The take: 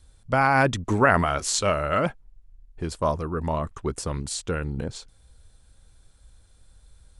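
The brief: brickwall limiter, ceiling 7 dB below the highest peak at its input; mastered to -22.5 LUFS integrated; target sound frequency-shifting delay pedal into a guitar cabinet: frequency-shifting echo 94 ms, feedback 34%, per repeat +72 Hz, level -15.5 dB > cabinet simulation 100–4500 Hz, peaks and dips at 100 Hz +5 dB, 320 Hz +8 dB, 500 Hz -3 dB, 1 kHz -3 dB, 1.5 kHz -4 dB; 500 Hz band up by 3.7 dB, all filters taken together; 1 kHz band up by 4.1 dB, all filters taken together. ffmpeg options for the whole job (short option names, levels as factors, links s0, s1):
-filter_complex "[0:a]equalizer=f=500:t=o:g=3,equalizer=f=1000:t=o:g=7,alimiter=limit=0.422:level=0:latency=1,asplit=4[s0][s1][s2][s3];[s1]adelay=94,afreqshift=72,volume=0.168[s4];[s2]adelay=188,afreqshift=144,volume=0.0569[s5];[s3]adelay=282,afreqshift=216,volume=0.0195[s6];[s0][s4][s5][s6]amix=inputs=4:normalize=0,highpass=100,equalizer=f=100:t=q:w=4:g=5,equalizer=f=320:t=q:w=4:g=8,equalizer=f=500:t=q:w=4:g=-3,equalizer=f=1000:t=q:w=4:g=-3,equalizer=f=1500:t=q:w=4:g=-4,lowpass=f=4500:w=0.5412,lowpass=f=4500:w=1.3066,volume=1.19"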